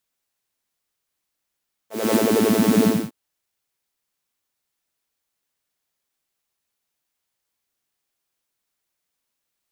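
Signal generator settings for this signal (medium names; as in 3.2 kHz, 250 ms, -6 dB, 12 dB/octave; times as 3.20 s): synth patch with filter wobble A3, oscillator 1 saw, sub -4.5 dB, noise -5.5 dB, filter highpass, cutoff 210 Hz, Q 6.2, filter envelope 1 oct, filter decay 0.70 s, attack 249 ms, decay 0.07 s, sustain -2.5 dB, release 0.27 s, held 0.94 s, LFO 11 Hz, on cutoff 0.6 oct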